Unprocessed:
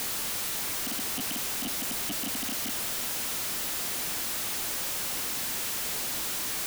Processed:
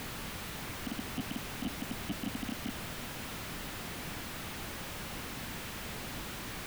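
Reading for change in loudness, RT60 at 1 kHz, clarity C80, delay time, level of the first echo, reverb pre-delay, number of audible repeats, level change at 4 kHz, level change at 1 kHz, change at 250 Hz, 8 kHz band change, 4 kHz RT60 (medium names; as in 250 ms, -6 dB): -10.5 dB, no reverb, no reverb, no echo, no echo, no reverb, no echo, -9.5 dB, -4.0 dB, +1.0 dB, -15.0 dB, no reverb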